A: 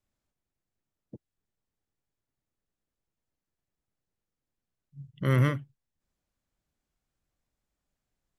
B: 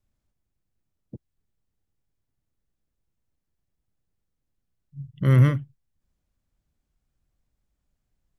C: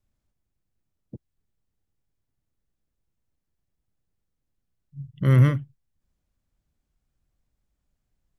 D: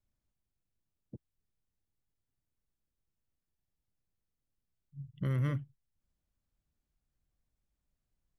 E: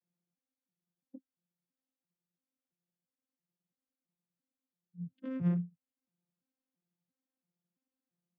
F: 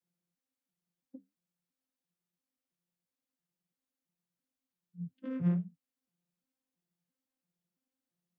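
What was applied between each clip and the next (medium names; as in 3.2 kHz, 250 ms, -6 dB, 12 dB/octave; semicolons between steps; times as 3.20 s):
bass shelf 190 Hz +11.5 dB
no audible change
peak limiter -17.5 dBFS, peak gain reduction 10 dB; trim -7.5 dB
vocoder on a broken chord bare fifth, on F3, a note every 337 ms
flange 1.2 Hz, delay 3.9 ms, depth 9.5 ms, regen -69%; trim +4.5 dB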